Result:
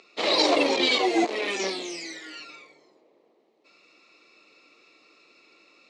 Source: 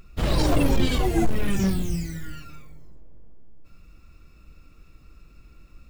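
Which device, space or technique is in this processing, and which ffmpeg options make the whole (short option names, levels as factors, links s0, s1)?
phone speaker on a table: -filter_complex "[0:a]highpass=f=360:w=0.5412,highpass=f=360:w=1.3066,equalizer=f=1500:t=q:w=4:g=-9,equalizer=f=2200:t=q:w=4:g=6,equalizer=f=4100:t=q:w=4:g=8,lowpass=f=6500:w=0.5412,lowpass=f=6500:w=1.3066,asettb=1/sr,asplit=3[s0][s1][s2];[s0]atrim=end=1.244[s3];[s1]atrim=start=1.24:end=2.4,asetpts=PTS-STARTPTS,afade=t=in:d=0.004:c=qsin,afade=t=out:st=1.156:d=0.004:c=qsin,highpass=f=220:w=0.5412,highpass=f=220:w=1.3066[s4];[s2]atrim=start=2.396[s5];[s3][s4]acrossfade=d=0.004:c1=hsin:c2=qsin[s6];[s6][s5]acrossfade=d=0.004:c1=qsin:c2=hsin,volume=1.78"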